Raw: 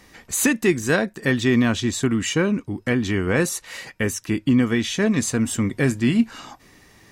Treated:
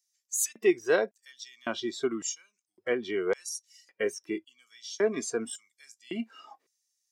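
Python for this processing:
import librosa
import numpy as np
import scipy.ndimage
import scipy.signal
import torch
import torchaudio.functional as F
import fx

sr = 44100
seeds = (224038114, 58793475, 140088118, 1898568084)

y = fx.noise_reduce_blind(x, sr, reduce_db=16)
y = fx.filter_lfo_highpass(y, sr, shape='square', hz=0.9, low_hz=420.0, high_hz=6200.0, q=2.3)
y = y * librosa.db_to_amplitude(-8.0)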